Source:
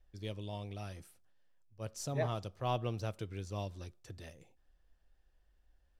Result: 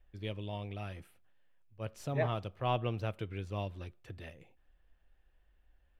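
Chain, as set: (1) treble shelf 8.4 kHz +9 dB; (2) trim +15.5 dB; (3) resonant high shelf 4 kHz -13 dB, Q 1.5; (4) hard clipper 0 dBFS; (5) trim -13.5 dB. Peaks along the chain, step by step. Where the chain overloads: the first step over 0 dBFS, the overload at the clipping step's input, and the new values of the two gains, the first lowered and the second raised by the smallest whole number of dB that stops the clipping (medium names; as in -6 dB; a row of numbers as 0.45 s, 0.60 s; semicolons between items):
-21.0 dBFS, -5.5 dBFS, -5.5 dBFS, -5.5 dBFS, -19.0 dBFS; nothing clips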